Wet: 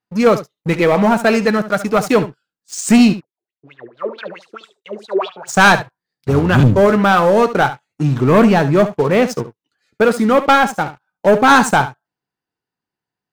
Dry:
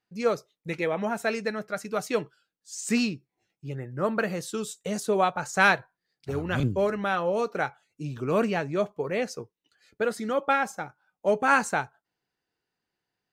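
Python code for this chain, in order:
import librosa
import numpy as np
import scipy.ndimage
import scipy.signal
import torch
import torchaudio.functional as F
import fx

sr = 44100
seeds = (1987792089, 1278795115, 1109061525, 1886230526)

y = fx.graphic_eq(x, sr, hz=(125, 250, 1000), db=(6, 5, 6))
y = fx.leveller(y, sr, passes=3)
y = fx.wah_lfo(y, sr, hz=4.6, low_hz=370.0, high_hz=4000.0, q=8.5, at=(3.12, 5.47), fade=0.02)
y = y + 10.0 ** (-13.5 / 20.0) * np.pad(y, (int(71 * sr / 1000.0), 0))[:len(y)]
y = y * 10.0 ** (1.0 / 20.0)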